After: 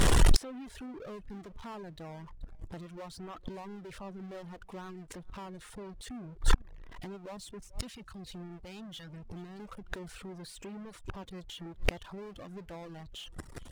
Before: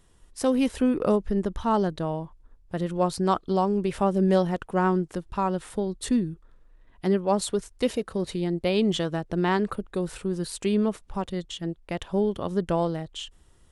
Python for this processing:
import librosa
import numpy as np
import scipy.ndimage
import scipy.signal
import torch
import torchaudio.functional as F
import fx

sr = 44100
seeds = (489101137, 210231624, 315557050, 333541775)

y = fx.recorder_agc(x, sr, target_db=-16.0, rise_db_per_s=34.0, max_gain_db=30)
y = fx.phaser_stages(y, sr, stages=2, low_hz=450.0, high_hz=1300.0, hz=1.1, feedback_pct=40, at=(7.37, 9.6))
y = fx.power_curve(y, sr, exponent=0.35)
y = y + 10.0 ** (-19.5 / 20.0) * np.pad(y, (int(432 * sr / 1000.0), 0))[:len(y)]
y = fx.dereverb_blind(y, sr, rt60_s=1.0)
y = fx.gate_flip(y, sr, shuts_db=-16.0, range_db=-33)
y = fx.high_shelf(y, sr, hz=8900.0, db=-10.5)
y = F.gain(torch.from_numpy(y), 4.0).numpy()